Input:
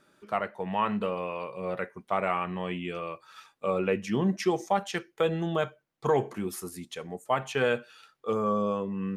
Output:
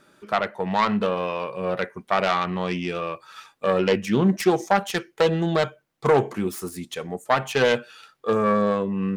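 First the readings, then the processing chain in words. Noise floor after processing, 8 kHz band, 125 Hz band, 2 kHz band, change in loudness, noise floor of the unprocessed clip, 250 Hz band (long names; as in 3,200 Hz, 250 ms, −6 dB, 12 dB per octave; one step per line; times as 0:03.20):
−63 dBFS, +6.0 dB, +6.5 dB, +7.5 dB, +6.5 dB, −70 dBFS, +7.0 dB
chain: phase distortion by the signal itself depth 0.17 ms
level +7 dB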